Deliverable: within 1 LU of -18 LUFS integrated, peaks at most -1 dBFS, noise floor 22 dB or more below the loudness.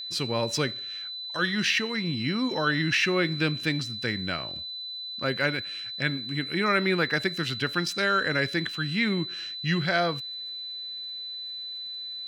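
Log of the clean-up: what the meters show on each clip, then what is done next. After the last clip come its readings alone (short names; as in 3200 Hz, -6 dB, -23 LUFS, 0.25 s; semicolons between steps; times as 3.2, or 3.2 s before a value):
ticks 25/s; steady tone 4000 Hz; tone level -34 dBFS; loudness -27.5 LUFS; peak -11.0 dBFS; loudness target -18.0 LUFS
-> de-click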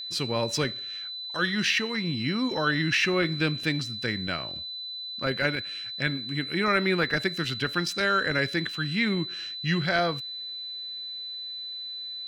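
ticks 1.2/s; steady tone 4000 Hz; tone level -34 dBFS
-> notch 4000 Hz, Q 30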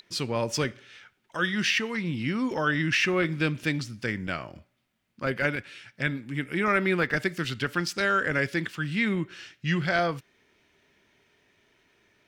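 steady tone none; loudness -27.5 LUFS; peak -11.0 dBFS; loudness target -18.0 LUFS
-> gain +9.5 dB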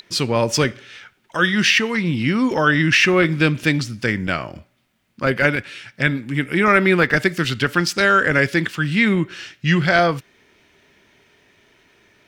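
loudness -18.0 LUFS; peak -1.5 dBFS; noise floor -61 dBFS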